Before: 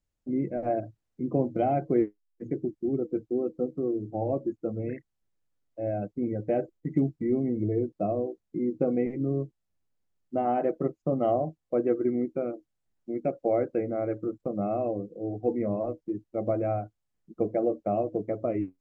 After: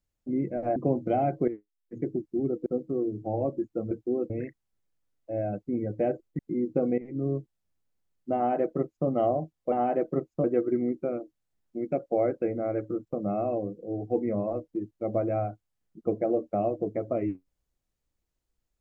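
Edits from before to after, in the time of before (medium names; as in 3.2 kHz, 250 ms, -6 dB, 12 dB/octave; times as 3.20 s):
0.76–1.25 s: delete
1.97–2.50 s: fade in quadratic, from -12.5 dB
3.15–3.54 s: move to 4.79 s
6.88–8.44 s: delete
9.03–9.33 s: fade in, from -15 dB
10.40–11.12 s: copy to 11.77 s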